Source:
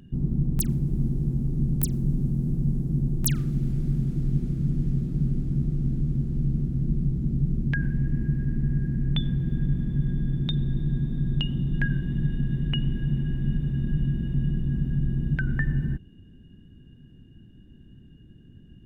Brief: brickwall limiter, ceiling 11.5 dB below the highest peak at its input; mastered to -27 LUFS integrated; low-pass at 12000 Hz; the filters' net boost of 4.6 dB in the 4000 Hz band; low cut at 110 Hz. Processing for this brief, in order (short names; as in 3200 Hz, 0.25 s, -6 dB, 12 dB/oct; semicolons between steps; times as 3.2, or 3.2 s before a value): HPF 110 Hz; LPF 12000 Hz; bell 4000 Hz +6.5 dB; gain +5.5 dB; limiter -19.5 dBFS